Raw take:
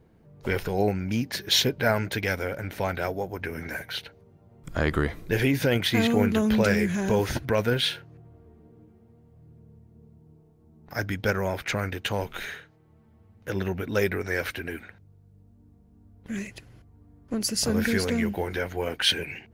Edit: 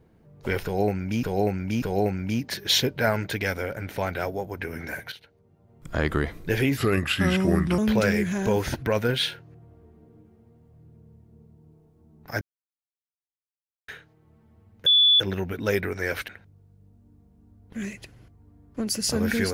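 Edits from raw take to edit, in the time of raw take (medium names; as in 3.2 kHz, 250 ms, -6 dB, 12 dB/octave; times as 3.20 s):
0.64–1.23 s: loop, 3 plays
3.94–4.82 s: fade in, from -14 dB
5.59–6.41 s: speed 81%
11.04–12.51 s: mute
13.49 s: add tone 3.45 kHz -14 dBFS 0.34 s
14.57–14.82 s: delete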